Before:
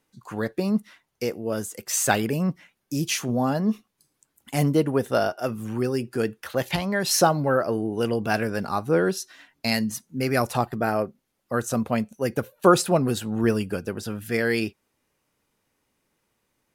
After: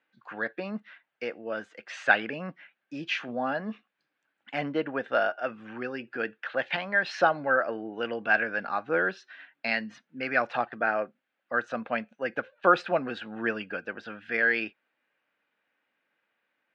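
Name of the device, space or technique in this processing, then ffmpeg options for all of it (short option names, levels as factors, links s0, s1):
phone earpiece: -filter_complex "[0:a]highpass=380,equalizer=f=400:t=q:w=4:g=-9,equalizer=f=1000:t=q:w=4:g=-5,equalizer=f=1600:t=q:w=4:g=9,equalizer=f=2500:t=q:w=4:g=3,lowpass=f=3300:w=0.5412,lowpass=f=3300:w=1.3066,asettb=1/sr,asplit=3[s0][s1][s2];[s0]atrim=end=4.614[s3];[s1]atrim=start=4.61:end=5.01,asetpts=PTS-STARTPTS,afade=t=in:d=0.004:c=qsin,afade=t=out:st=0.396:d=0.004:c=qsin,lowpass=6700[s4];[s2]atrim=start=5.006[s5];[s3][s4]acrossfade=d=0.004:c1=hsin:c2=qsin[s6];[s6][s5]acrossfade=d=0.004:c1=qsin:c2=hsin,volume=0.794"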